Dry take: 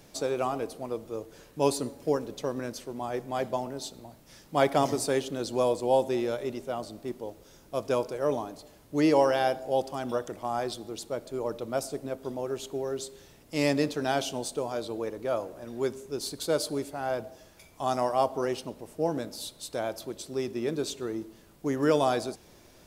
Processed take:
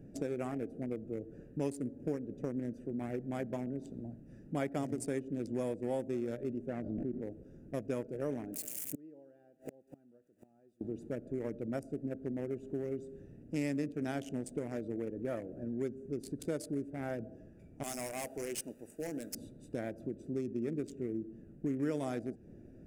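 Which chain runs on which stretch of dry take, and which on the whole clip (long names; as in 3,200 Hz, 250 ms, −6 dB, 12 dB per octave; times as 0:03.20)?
0:06.68–0:07.23: low-pass filter 1,800 Hz + background raised ahead of every attack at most 33 dB per second
0:08.53–0:10.81: spike at every zero crossing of −25 dBFS + low-shelf EQ 160 Hz −10.5 dB + gate with flip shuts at −23 dBFS, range −31 dB
0:17.83–0:19.35: first difference + leveller curve on the samples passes 5
whole clip: adaptive Wiener filter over 41 samples; octave-band graphic EQ 125/250/1,000/2,000/4,000/8,000 Hz +4/+7/−9/+7/−11/+6 dB; downward compressor 3 to 1, threshold −37 dBFS; level +1 dB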